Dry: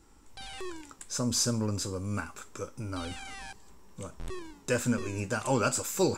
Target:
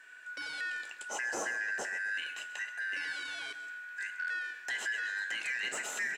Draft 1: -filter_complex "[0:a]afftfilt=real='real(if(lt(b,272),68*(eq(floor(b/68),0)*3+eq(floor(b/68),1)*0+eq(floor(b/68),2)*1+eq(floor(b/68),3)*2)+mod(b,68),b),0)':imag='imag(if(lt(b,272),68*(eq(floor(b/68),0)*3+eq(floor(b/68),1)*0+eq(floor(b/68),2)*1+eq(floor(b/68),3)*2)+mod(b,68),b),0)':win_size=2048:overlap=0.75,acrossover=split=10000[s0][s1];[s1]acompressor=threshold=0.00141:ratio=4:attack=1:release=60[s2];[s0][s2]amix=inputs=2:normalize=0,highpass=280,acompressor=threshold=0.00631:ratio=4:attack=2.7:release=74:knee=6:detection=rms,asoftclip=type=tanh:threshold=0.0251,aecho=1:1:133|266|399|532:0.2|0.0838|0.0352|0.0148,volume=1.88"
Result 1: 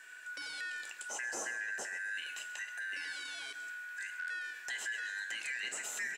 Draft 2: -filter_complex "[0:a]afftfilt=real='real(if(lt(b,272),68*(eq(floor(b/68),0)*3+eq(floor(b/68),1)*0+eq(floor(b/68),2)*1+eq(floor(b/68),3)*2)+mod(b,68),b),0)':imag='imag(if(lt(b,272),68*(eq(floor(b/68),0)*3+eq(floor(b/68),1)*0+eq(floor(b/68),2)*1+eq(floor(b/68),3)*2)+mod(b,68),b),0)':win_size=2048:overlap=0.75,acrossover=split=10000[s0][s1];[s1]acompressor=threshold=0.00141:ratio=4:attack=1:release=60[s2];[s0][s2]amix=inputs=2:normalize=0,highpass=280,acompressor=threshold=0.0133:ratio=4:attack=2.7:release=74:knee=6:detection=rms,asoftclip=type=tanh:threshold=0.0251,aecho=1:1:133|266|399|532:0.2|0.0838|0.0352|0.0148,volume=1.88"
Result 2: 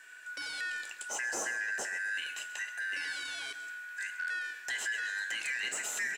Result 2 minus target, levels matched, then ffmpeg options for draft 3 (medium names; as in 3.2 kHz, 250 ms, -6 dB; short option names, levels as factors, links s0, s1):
8 kHz band +4.0 dB
-filter_complex "[0:a]afftfilt=real='real(if(lt(b,272),68*(eq(floor(b/68),0)*3+eq(floor(b/68),1)*0+eq(floor(b/68),2)*1+eq(floor(b/68),3)*2)+mod(b,68),b),0)':imag='imag(if(lt(b,272),68*(eq(floor(b/68),0)*3+eq(floor(b/68),1)*0+eq(floor(b/68),2)*1+eq(floor(b/68),3)*2)+mod(b,68),b),0)':win_size=2048:overlap=0.75,acrossover=split=10000[s0][s1];[s1]acompressor=threshold=0.00141:ratio=4:attack=1:release=60[s2];[s0][s2]amix=inputs=2:normalize=0,highpass=280,highshelf=f=4900:g=-10.5,acompressor=threshold=0.0133:ratio=4:attack=2.7:release=74:knee=6:detection=rms,asoftclip=type=tanh:threshold=0.0251,aecho=1:1:133|266|399|532:0.2|0.0838|0.0352|0.0148,volume=1.88"